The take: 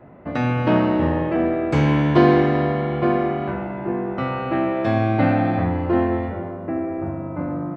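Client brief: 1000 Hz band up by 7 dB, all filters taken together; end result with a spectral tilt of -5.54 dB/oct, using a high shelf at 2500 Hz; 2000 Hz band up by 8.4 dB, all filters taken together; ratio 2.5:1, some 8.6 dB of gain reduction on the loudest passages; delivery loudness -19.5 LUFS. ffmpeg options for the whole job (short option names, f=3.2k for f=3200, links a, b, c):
-af "equalizer=f=1k:t=o:g=7.5,equalizer=f=2k:t=o:g=5,highshelf=f=2.5k:g=6.5,acompressor=threshold=-20dB:ratio=2.5,volume=3dB"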